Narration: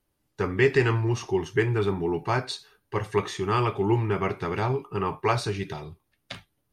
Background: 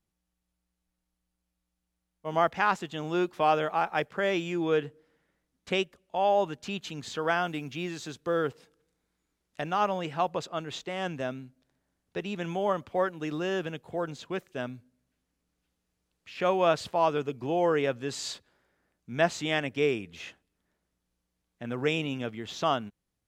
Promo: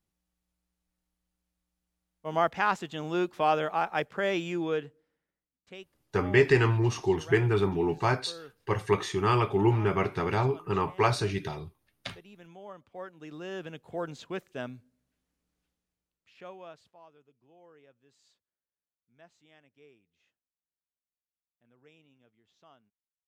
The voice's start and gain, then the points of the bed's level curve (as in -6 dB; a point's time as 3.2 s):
5.75 s, -0.5 dB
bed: 4.56 s -1 dB
5.54 s -18 dB
12.72 s -18 dB
13.98 s -2.5 dB
15.62 s -2.5 dB
17.13 s -32 dB